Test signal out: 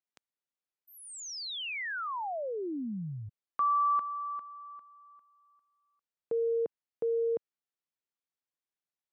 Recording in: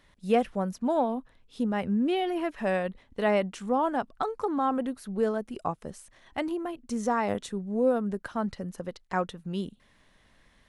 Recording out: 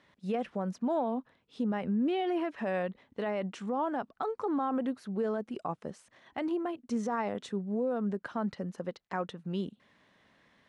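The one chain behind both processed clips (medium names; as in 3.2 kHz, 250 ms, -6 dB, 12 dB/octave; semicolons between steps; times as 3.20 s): treble shelf 4.5 kHz -8 dB; peak limiter -23.5 dBFS; band-pass 140–7700 Hz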